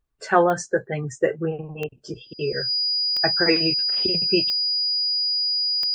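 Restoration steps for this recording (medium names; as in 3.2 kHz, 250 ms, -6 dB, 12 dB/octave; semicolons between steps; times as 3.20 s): de-click; band-stop 4.9 kHz, Q 30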